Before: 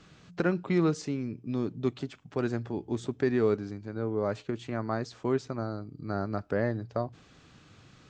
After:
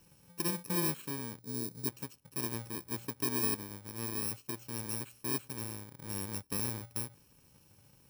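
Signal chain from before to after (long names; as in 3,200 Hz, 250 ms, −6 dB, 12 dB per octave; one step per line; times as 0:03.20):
samples in bit-reversed order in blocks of 64 samples
gain on a spectral selection 0:01.39–0:01.87, 510–3,700 Hz −11 dB
level −7 dB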